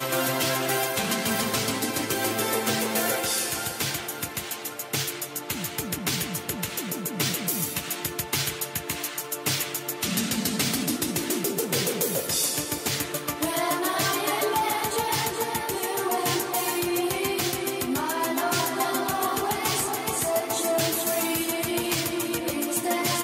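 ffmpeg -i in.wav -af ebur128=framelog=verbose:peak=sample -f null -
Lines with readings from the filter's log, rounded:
Integrated loudness:
  I:         -25.9 LUFS
  Threshold: -35.9 LUFS
Loudness range:
  LRA:         3.0 LU
  Threshold: -46.0 LUFS
  LRA low:   -28.0 LUFS
  LRA high:  -25.0 LUFS
Sample peak:
  Peak:      -10.8 dBFS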